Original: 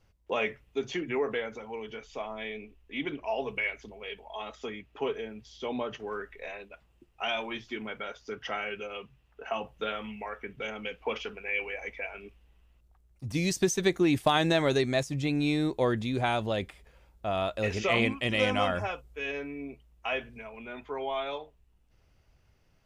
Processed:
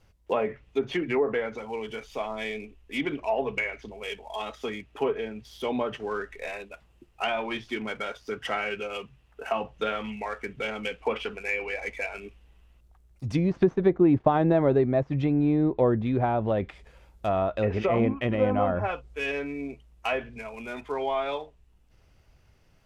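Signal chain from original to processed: switching dead time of 0.056 ms; treble ducked by the level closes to 890 Hz, closed at -24.5 dBFS; gain +5 dB

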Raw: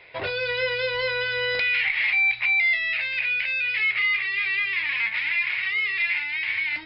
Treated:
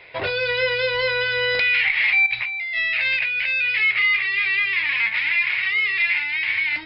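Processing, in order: 2.26–3.41 negative-ratio compressor -28 dBFS, ratio -1; gain +4 dB

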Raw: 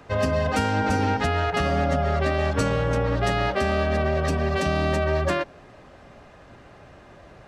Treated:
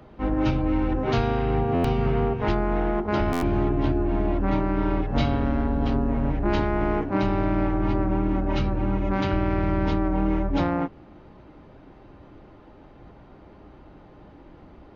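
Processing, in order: speed mistake 15 ips tape played at 7.5 ips; stuck buffer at 1.74/3.32, samples 512, times 8

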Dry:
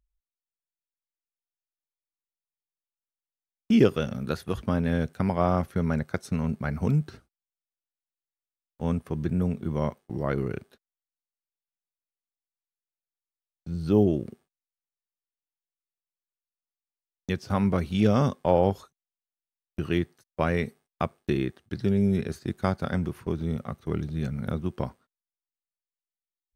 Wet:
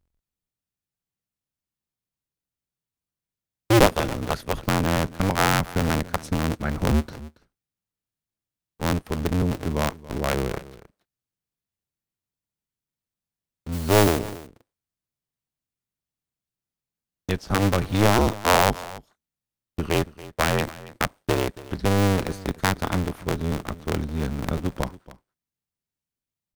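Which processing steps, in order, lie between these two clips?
cycle switcher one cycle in 2, inverted; 13.72–14.19 modulation noise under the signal 14 dB; echo 0.279 s -18.5 dB; gain +3 dB

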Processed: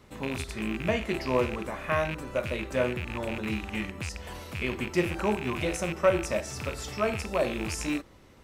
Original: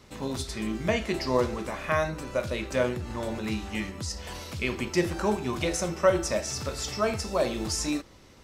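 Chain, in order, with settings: rattling part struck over -34 dBFS, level -21 dBFS; bell 5300 Hz -7.5 dB 1.2 oct; gain -1 dB

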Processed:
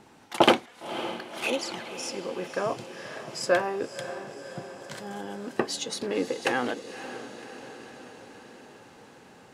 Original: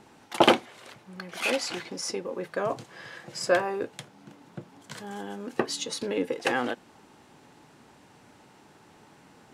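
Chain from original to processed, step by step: 0.66–2.18 envelope flanger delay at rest 4.9 ms, full sweep at -23.5 dBFS; diffused feedback echo 0.552 s, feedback 63%, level -12 dB

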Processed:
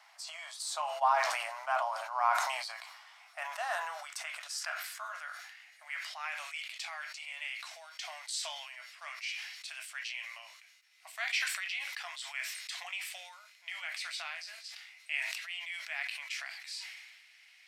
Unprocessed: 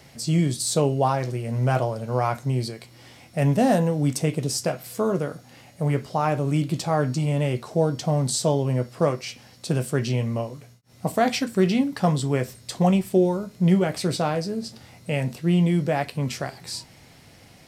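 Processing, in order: high-pass sweep 1000 Hz -> 2200 Hz, 2.67–6.6; elliptic high-pass 650 Hz, stop band 40 dB; high shelf 7200 Hz -10 dB; sustainer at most 40 dB/s; gain -7 dB

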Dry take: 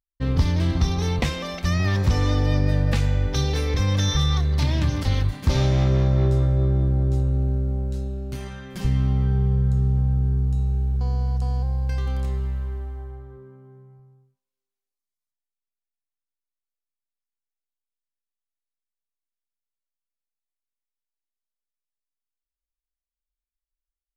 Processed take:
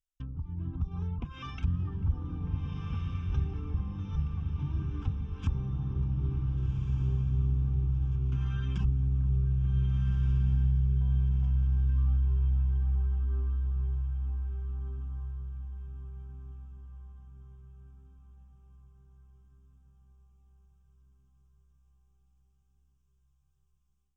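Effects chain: compressor 3:1, threshold -40 dBFS, peak gain reduction 18.5 dB; treble ducked by the level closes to 780 Hz, closed at -33 dBFS; low shelf 230 Hz +9 dB; notches 50/100 Hz; dark delay 0.444 s, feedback 76%, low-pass 1800 Hz, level -13 dB; reverb removal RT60 1.5 s; tilt shelf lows -5.5 dB, about 1400 Hz; fixed phaser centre 2900 Hz, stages 8; diffused feedback echo 1.544 s, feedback 49%, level -3.5 dB; AGC gain up to 9 dB; gain -3.5 dB

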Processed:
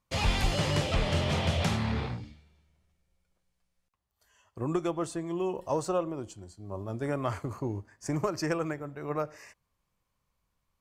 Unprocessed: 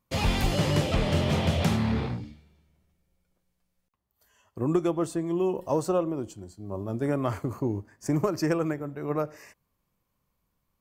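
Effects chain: LPF 10000 Hz 12 dB/oct; bell 250 Hz -6.5 dB 2.2 oct

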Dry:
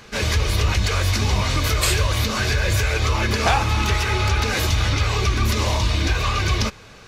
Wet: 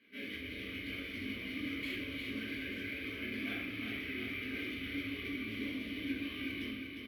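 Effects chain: vowel filter i; tone controls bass -8 dB, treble -11 dB; feedback echo 0.354 s, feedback 59%, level -6 dB; shoebox room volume 110 m³, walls mixed, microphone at 1.6 m; decimation joined by straight lines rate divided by 3×; gain -9 dB

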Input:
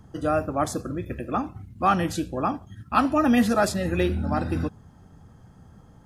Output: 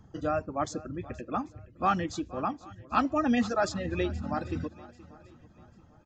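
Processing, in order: reverb removal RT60 1.2 s; on a send: swung echo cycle 0.791 s, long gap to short 1.5:1, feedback 32%, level -19.5 dB; on the sum: downsampling 16000 Hz; gain -5 dB

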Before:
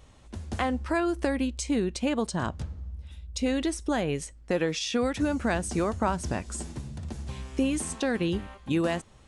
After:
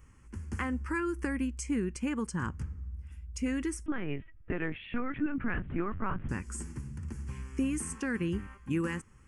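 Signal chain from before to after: fixed phaser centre 1600 Hz, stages 4; 3.86–6.29 LPC vocoder at 8 kHz pitch kept; gain -2 dB

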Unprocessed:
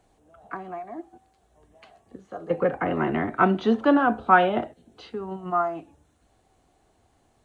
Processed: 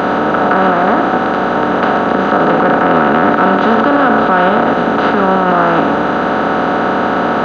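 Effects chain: per-bin compression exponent 0.2; in parallel at -10.5 dB: soft clip -9.5 dBFS, distortion -14 dB; on the sum: maximiser +5.5 dB; gain -1 dB

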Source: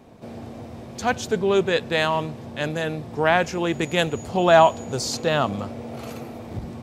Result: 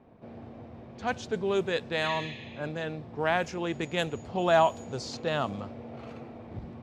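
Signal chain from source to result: spectral repair 2.06–2.63, 1700–7000 Hz both; low-pass opened by the level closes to 2200 Hz, open at -14.5 dBFS; gain -8 dB

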